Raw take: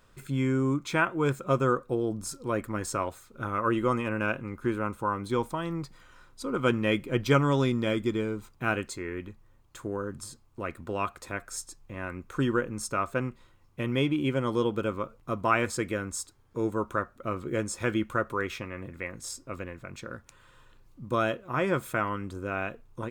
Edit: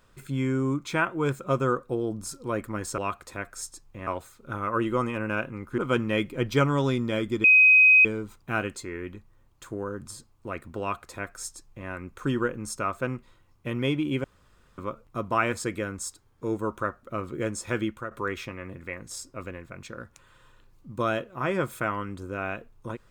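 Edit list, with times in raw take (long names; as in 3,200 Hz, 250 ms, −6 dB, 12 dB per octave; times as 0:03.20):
0:04.69–0:06.52: remove
0:08.18: insert tone 2,520 Hz −12.5 dBFS 0.61 s
0:10.93–0:12.02: duplicate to 0:02.98
0:14.37–0:14.91: fill with room tone
0:17.94–0:18.24: fade out, to −11.5 dB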